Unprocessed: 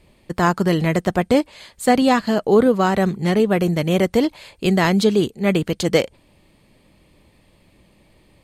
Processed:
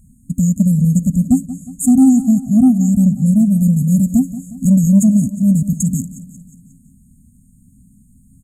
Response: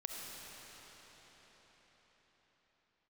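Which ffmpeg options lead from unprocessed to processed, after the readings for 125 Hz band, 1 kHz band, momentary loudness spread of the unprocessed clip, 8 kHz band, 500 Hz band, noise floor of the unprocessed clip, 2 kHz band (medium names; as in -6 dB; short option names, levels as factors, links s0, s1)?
+8.5 dB, under -15 dB, 5 LU, +9.5 dB, under -20 dB, -57 dBFS, under -40 dB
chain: -af "afftfilt=real='re*(1-between(b*sr/4096,270,6500))':imag='im*(1-between(b*sr/4096,270,6500))':win_size=4096:overlap=0.75,equalizer=f=1500:w=0.3:g=13.5,acontrast=70,aecho=1:1:180|360|540|720|900:0.178|0.0978|0.0538|0.0296|0.0163"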